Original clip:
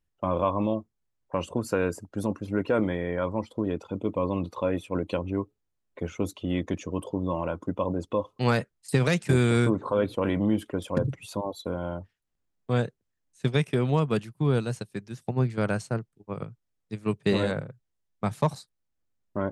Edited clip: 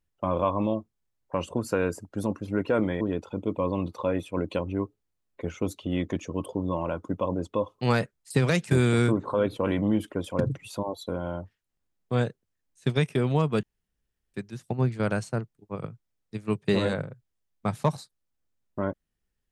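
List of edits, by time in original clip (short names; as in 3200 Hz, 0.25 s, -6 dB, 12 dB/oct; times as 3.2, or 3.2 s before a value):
3.01–3.59 cut
14.21–14.92 room tone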